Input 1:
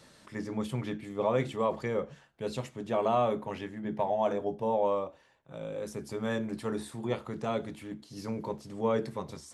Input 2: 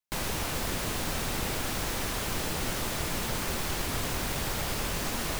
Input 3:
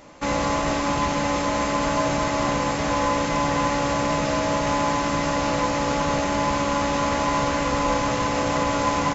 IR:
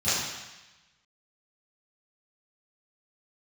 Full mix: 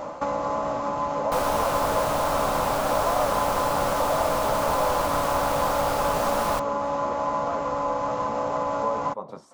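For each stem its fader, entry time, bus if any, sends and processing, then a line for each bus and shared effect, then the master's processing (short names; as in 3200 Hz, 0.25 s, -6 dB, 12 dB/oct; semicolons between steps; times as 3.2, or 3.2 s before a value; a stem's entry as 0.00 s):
-2.5 dB, 0.00 s, bus A, no send, HPF 180 Hz; high shelf 5600 Hz -11.5 dB
-1.0 dB, 1.20 s, no bus, no send, dry
+2.5 dB, 0.00 s, bus A, no send, auto duck -8 dB, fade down 0.25 s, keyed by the first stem
bus A: 0.0 dB, bell 210 Hz +7 dB 2.5 oct; compressor 6:1, threshold -33 dBFS, peak gain reduction 14 dB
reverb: off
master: band shelf 840 Hz +13 dB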